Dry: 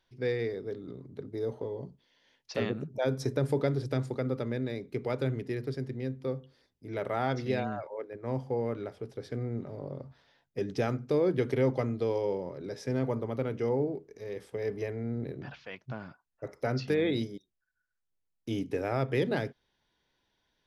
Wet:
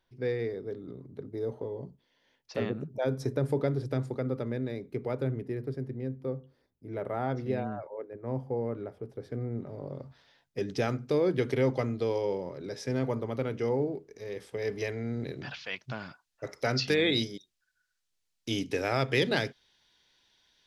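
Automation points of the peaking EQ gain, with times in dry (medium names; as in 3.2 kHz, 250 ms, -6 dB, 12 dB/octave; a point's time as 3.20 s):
peaking EQ 4.8 kHz 2.8 oct
4.81 s -4.5 dB
5.50 s -11.5 dB
9.08 s -11.5 dB
9.69 s -3.5 dB
10.05 s +4.5 dB
14.47 s +4.5 dB
14.88 s +13 dB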